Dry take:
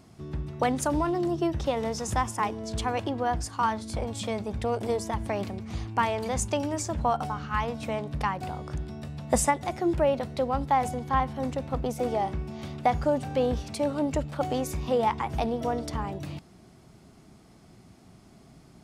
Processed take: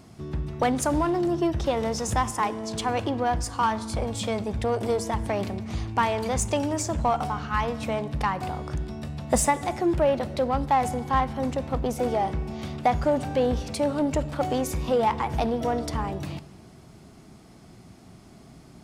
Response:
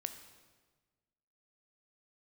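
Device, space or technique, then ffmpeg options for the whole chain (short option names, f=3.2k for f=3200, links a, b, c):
saturated reverb return: -filter_complex "[0:a]asettb=1/sr,asplit=3[a][b][c];[a]atrim=end=2.304[d];[b]atrim=start=2.3:end=2.89,asetpts=PTS-STARTPTS,afade=t=in:d=0.004:c=qsin,afade=t=out:st=0.586:d=0.004:c=qsin,highpass=150[e];[c]atrim=start=2.886[f];[d][e]acrossfade=d=0.004:c1=hsin:c2=qsin[g];[g][f]acrossfade=d=0.004:c1=qsin:c2=hsin,asplit=2[h][i];[1:a]atrim=start_sample=2205[j];[i][j]afir=irnorm=-1:irlink=0,asoftclip=type=tanh:threshold=-29.5dB,volume=-2dB[k];[h][k]amix=inputs=2:normalize=0"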